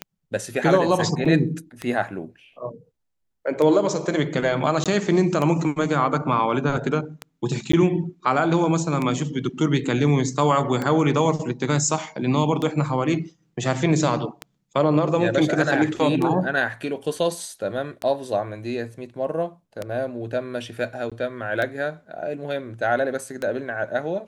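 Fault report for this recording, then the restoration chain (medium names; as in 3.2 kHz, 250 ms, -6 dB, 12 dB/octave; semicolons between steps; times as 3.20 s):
tick 33 1/3 rpm -13 dBFS
1.25–1.26 s: dropout 5.2 ms
4.84–4.86 s: dropout 17 ms
7.72–7.73 s: dropout 14 ms
21.10–21.12 s: dropout 16 ms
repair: de-click; interpolate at 1.25 s, 5.2 ms; interpolate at 4.84 s, 17 ms; interpolate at 7.72 s, 14 ms; interpolate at 21.10 s, 16 ms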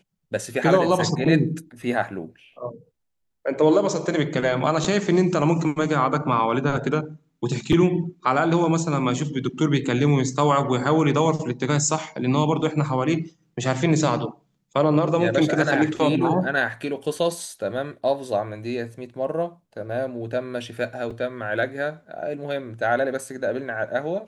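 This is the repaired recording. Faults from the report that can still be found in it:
nothing left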